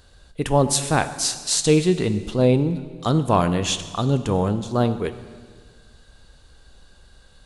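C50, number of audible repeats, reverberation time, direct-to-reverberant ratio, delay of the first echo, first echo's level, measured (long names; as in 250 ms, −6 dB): 12.5 dB, no echo audible, 1.7 s, 10.5 dB, no echo audible, no echo audible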